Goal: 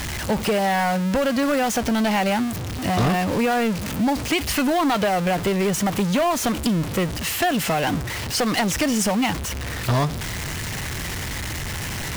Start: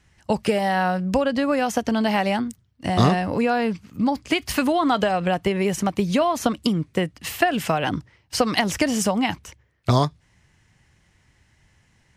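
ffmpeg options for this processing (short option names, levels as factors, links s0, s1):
-filter_complex "[0:a]aeval=exprs='val(0)+0.5*0.106*sgn(val(0))':c=same,asplit=2[s0][s1];[s1]acrusher=bits=2:mix=0:aa=0.5,volume=0.668[s2];[s0][s2]amix=inputs=2:normalize=0,asoftclip=type=tanh:threshold=0.224,volume=0.708"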